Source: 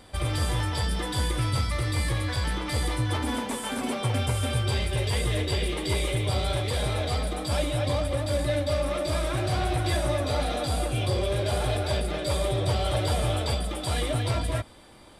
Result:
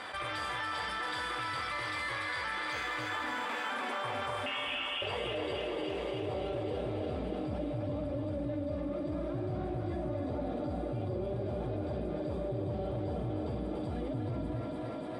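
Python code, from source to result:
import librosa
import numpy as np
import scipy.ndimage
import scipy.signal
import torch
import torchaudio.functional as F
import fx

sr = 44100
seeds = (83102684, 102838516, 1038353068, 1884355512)

y = fx.resample_bad(x, sr, factor=4, down='none', up='hold', at=(2.72, 3.69))
y = fx.clip_hard(y, sr, threshold_db=-27.5, at=(5.56, 6.23))
y = fx.filter_sweep_bandpass(y, sr, from_hz=1500.0, to_hz=240.0, start_s=3.51, end_s=7.44, q=1.3)
y = fx.freq_invert(y, sr, carrier_hz=3400, at=(4.46, 5.02))
y = fx.doubler(y, sr, ms=49.0, db=-12.5)
y = fx.echo_thinned(y, sr, ms=292, feedback_pct=72, hz=280.0, wet_db=-5.5)
y = fx.env_flatten(y, sr, amount_pct=70)
y = F.gain(torch.from_numpy(y), -5.0).numpy()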